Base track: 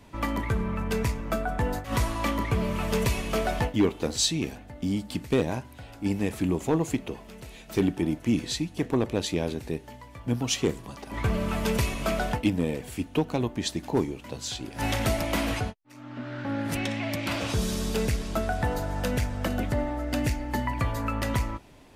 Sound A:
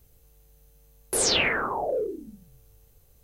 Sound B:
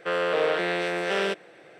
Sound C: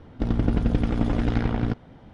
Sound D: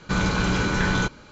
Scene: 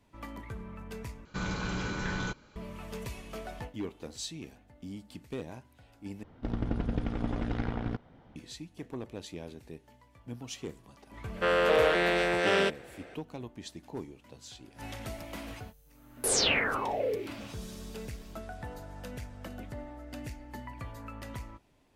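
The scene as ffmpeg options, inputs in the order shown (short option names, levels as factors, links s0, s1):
-filter_complex "[0:a]volume=0.188[s0];[3:a]equalizer=f=1100:t=o:w=2.9:g=3.5[s1];[1:a]bandreject=f=350:w=12[s2];[s0]asplit=3[s3][s4][s5];[s3]atrim=end=1.254[s6];[4:a]atrim=end=1.31,asetpts=PTS-STARTPTS,volume=0.266[s7];[s4]atrim=start=2.556:end=6.234[s8];[s1]atrim=end=2.13,asetpts=PTS-STARTPTS,volume=0.316[s9];[s5]atrim=start=8.356[s10];[2:a]atrim=end=1.79,asetpts=PTS-STARTPTS,afade=t=in:d=0.004:c=hsin,afade=t=out:st=1.786:d=0.004:c=hsin,adelay=11360[s11];[s2]atrim=end=3.23,asetpts=PTS-STARTPTS,volume=0.668,afade=t=in:d=0.004:c=hsin,afade=t=out:st=3.226:d=0.004:c=hsin,adelay=15110[s12];[s6][s7]acrossfade=d=0.004:c1=hsin:c2=hsin[s13];[s13][s8]acrossfade=d=0.004:c1=hsin:c2=hsin[s14];[s14][s9]acrossfade=d=0.004:c1=hsin:c2=hsin[s15];[s15][s10]acrossfade=d=0.004:c1=hsin:c2=hsin[s16];[s16][s11][s12]amix=inputs=3:normalize=0"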